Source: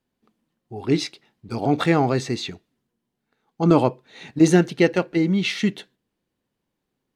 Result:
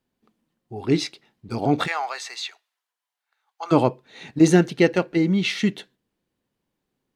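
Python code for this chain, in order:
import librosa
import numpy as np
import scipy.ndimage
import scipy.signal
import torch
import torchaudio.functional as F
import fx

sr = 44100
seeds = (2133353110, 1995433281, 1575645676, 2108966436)

y = fx.highpass(x, sr, hz=810.0, slope=24, at=(1.86, 3.71), fade=0.02)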